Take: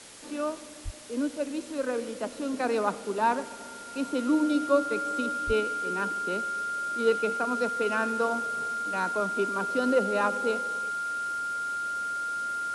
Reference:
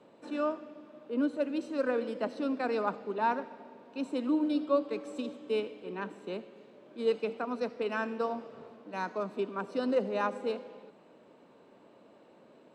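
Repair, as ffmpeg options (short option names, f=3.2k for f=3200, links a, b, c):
-filter_complex "[0:a]bandreject=f=1.4k:w=30,asplit=3[a][b][c];[a]afade=t=out:st=0.84:d=0.02[d];[b]highpass=f=140:w=0.5412,highpass=f=140:w=1.3066,afade=t=in:st=0.84:d=0.02,afade=t=out:st=0.96:d=0.02[e];[c]afade=t=in:st=0.96:d=0.02[f];[d][e][f]amix=inputs=3:normalize=0,asplit=3[g][h][i];[g]afade=t=out:st=5.46:d=0.02[j];[h]highpass=f=140:w=0.5412,highpass=f=140:w=1.3066,afade=t=in:st=5.46:d=0.02,afade=t=out:st=5.58:d=0.02[k];[i]afade=t=in:st=5.58:d=0.02[l];[j][k][l]amix=inputs=3:normalize=0,afwtdn=0.005,asetnsamples=n=441:p=0,asendcmd='2.54 volume volume -4dB',volume=0dB"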